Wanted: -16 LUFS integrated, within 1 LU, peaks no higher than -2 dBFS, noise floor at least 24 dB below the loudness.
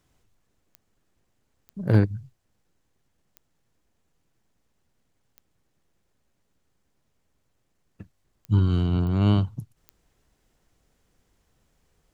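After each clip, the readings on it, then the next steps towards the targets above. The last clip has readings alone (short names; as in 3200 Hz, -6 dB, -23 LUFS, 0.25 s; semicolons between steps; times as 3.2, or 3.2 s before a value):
clicks 7; loudness -23.5 LUFS; peak -6.5 dBFS; loudness target -16.0 LUFS
-> de-click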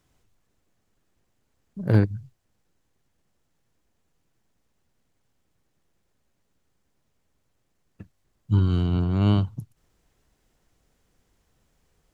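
clicks 0; loudness -23.5 LUFS; peak -6.5 dBFS; loudness target -16.0 LUFS
-> gain +7.5 dB; limiter -2 dBFS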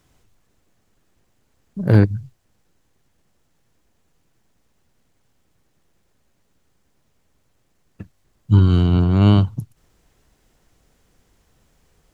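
loudness -16.5 LUFS; peak -2.0 dBFS; noise floor -65 dBFS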